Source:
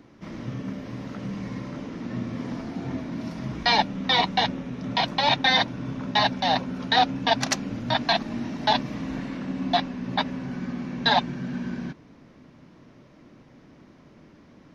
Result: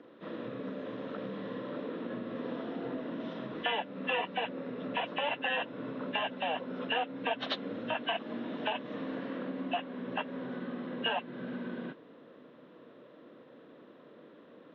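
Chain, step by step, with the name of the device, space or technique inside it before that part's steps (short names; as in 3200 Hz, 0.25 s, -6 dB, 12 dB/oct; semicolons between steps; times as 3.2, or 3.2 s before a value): hearing aid with frequency lowering (nonlinear frequency compression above 1500 Hz 1.5:1; compressor 4:1, threshold -29 dBFS, peak gain reduction 12 dB; speaker cabinet 320–5200 Hz, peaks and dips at 490 Hz +9 dB, 830 Hz -6 dB, 2200 Hz -6 dB)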